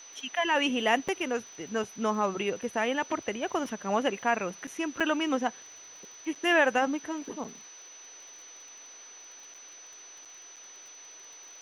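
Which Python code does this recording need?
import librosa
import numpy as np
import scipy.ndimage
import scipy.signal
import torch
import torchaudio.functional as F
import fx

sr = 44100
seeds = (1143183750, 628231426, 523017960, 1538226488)

y = fx.fix_declick_ar(x, sr, threshold=6.5)
y = fx.notch(y, sr, hz=6000.0, q=30.0)
y = fx.fix_interpolate(y, sr, at_s=(1.08, 4.67, 5.0, 6.35, 7.44, 9.54, 10.25, 10.56), length_ms=5.8)
y = fx.noise_reduce(y, sr, print_start_s=10.13, print_end_s=10.63, reduce_db=26.0)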